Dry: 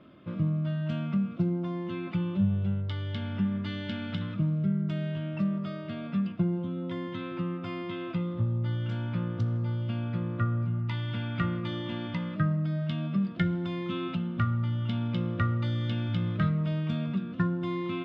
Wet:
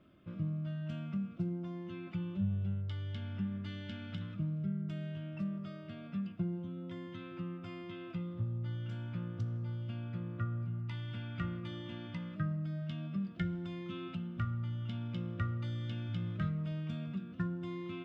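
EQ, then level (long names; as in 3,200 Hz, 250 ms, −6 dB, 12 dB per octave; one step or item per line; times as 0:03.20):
graphic EQ with 10 bands 125 Hz −7 dB, 250 Hz −8 dB, 500 Hz −8 dB, 1,000 Hz −10 dB, 2,000 Hz −6 dB, 4,000 Hz −9 dB
0.0 dB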